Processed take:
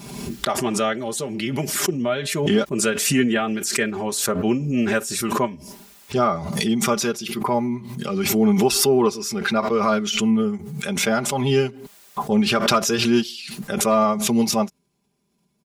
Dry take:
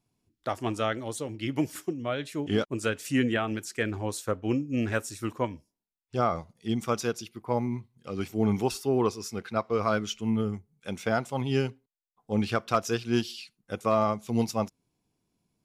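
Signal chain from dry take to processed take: high-pass 55 Hz; comb 5 ms, depth 85%; swell ahead of each attack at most 41 dB/s; trim +4 dB

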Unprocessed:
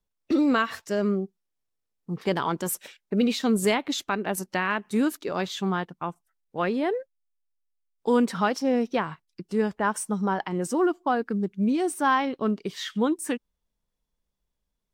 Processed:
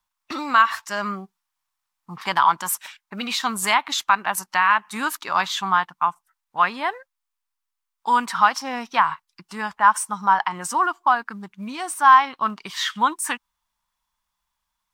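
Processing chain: resonant low shelf 670 Hz -13.5 dB, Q 3; in parallel at +2 dB: gain riding within 4 dB 0.5 s; on the sum: trim -1 dB

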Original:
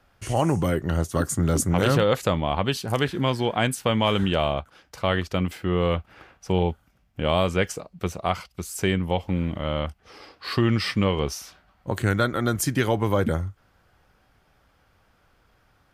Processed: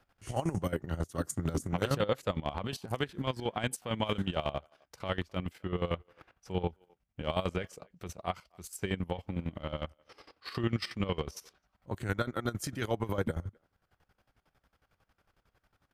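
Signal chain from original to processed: square tremolo 11 Hz, depth 65%, duty 40%; transient shaper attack -4 dB, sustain -8 dB; speakerphone echo 260 ms, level -29 dB; trim -5 dB

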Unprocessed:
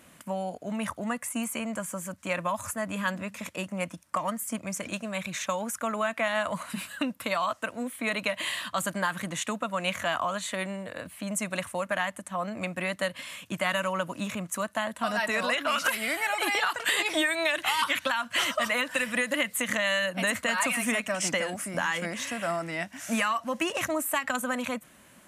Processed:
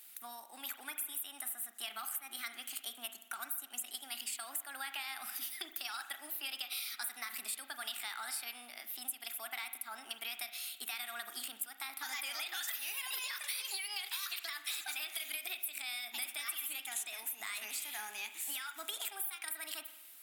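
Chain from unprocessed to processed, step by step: high-pass 140 Hz 24 dB/octave; differentiator; compression 6:1, threshold -41 dBFS, peak gain reduction 15 dB; wide varispeed 1.25×; spring tank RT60 1 s, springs 37 ms, chirp 40 ms, DRR 8.5 dB; trim +4 dB

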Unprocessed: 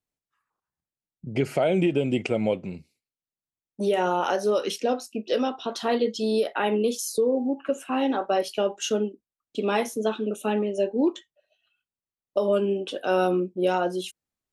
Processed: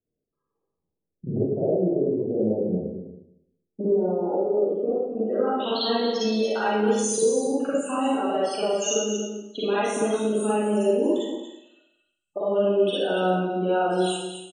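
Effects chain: low-pass sweep 440 Hz -> 8.6 kHz, 4.99–6.03 s; compression 16:1, threshold -28 dBFS, peak gain reduction 17 dB; loudest bins only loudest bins 32; 8.87–9.86 s: tone controls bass -5 dB, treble +9 dB; delay 233 ms -9 dB; Schroeder reverb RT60 0.81 s, DRR -8.5 dB

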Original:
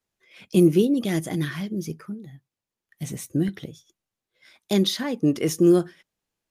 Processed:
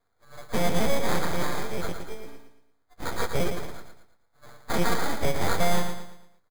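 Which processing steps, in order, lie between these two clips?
partials quantised in pitch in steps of 4 st; peak limiter -13 dBFS, peak gain reduction 7.5 dB; sample-rate reducer 2.8 kHz, jitter 0%; full-wave rectifier; feedback delay 114 ms, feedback 39%, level -7 dB

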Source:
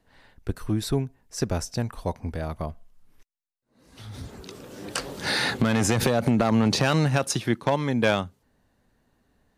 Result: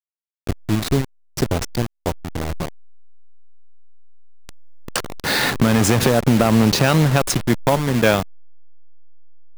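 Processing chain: send-on-delta sampling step -25 dBFS; trim +6.5 dB

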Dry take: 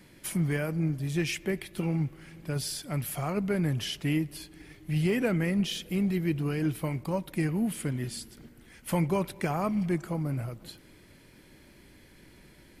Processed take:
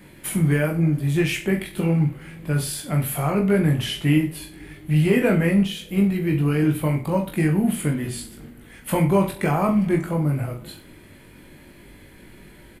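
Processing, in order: peaking EQ 5.4 kHz -10 dB 0.69 oct; on a send: reverse bouncing-ball echo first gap 20 ms, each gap 1.1×, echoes 5; 5.63–6.32 s: on the sum: upward expansion 1.5:1, over -31 dBFS; trim +6.5 dB

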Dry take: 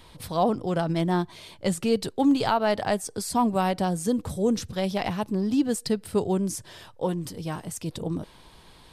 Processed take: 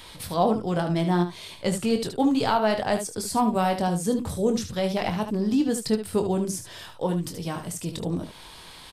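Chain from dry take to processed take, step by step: early reflections 23 ms -8 dB, 74 ms -9 dB; tape noise reduction on one side only encoder only

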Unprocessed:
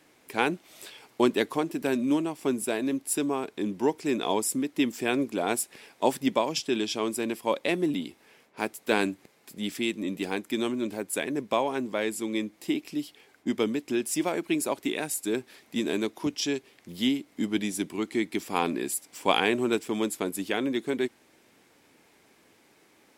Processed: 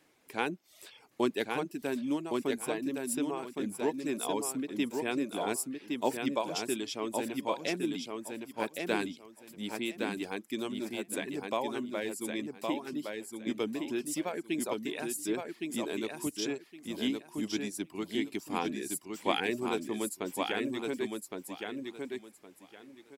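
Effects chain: reverb removal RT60 0.55 s; feedback delay 1114 ms, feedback 21%, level -4 dB; trim -6.5 dB

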